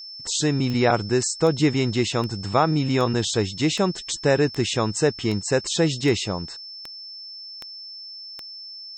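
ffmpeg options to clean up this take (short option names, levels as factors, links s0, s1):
-af "adeclick=t=4,bandreject=f=5300:w=30"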